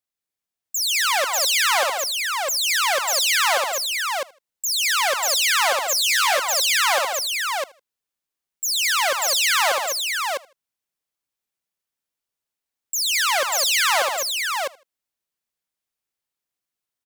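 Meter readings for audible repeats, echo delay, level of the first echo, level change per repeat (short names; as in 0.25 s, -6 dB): 6, 78 ms, -22.5 dB, no steady repeat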